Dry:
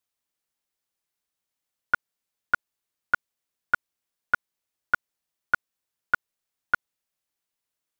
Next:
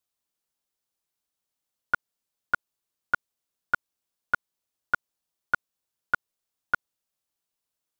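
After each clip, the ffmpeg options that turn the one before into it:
ffmpeg -i in.wav -af "equalizer=frequency=2000:width_type=o:width=0.85:gain=-4.5" out.wav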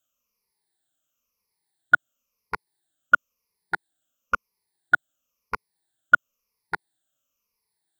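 ffmpeg -i in.wav -af "afftfilt=real='re*pow(10,20/40*sin(2*PI*(0.85*log(max(b,1)*sr/1024/100)/log(2)-(-0.98)*(pts-256)/sr)))':imag='im*pow(10,20/40*sin(2*PI*(0.85*log(max(b,1)*sr/1024/100)/log(2)-(-0.98)*(pts-256)/sr)))':win_size=1024:overlap=0.75,volume=1dB" out.wav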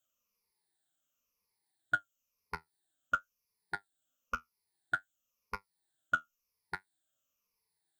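ffmpeg -i in.wav -filter_complex "[0:a]acrossover=split=180|3000[link_01][link_02][link_03];[link_02]acompressor=threshold=-45dB:ratio=1.5[link_04];[link_01][link_04][link_03]amix=inputs=3:normalize=0,flanger=delay=9:depth=3.8:regen=54:speed=0.56:shape=triangular" out.wav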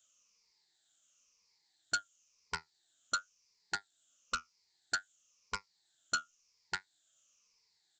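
ffmpeg -i in.wav -af "aresample=16000,asoftclip=type=tanh:threshold=-35dB,aresample=44100,crystalizer=i=7:c=0,volume=1dB" out.wav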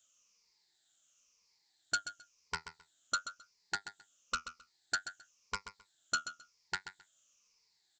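ffmpeg -i in.wav -af "aecho=1:1:132|264:0.282|0.0507" out.wav

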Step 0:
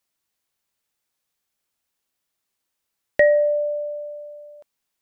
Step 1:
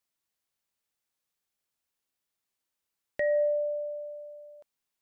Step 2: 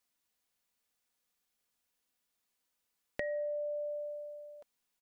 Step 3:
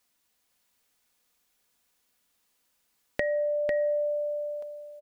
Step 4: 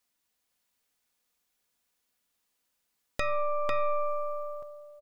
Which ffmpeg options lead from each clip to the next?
ffmpeg -i in.wav -af "alimiter=limit=-14.5dB:level=0:latency=1:release=74,volume=-6.5dB" out.wav
ffmpeg -i in.wav -af "aecho=1:1:4.1:0.37,acompressor=threshold=-37dB:ratio=6,volume=2dB" out.wav
ffmpeg -i in.wav -af "aecho=1:1:498:0.562,volume=8.5dB" out.wav
ffmpeg -i in.wav -af "asoftclip=type=tanh:threshold=-13.5dB,aeval=exprs='0.188*(cos(1*acos(clip(val(0)/0.188,-1,1)))-cos(1*PI/2))+0.075*(cos(6*acos(clip(val(0)/0.188,-1,1)))-cos(6*PI/2))':channel_layout=same,volume=-5.5dB" out.wav

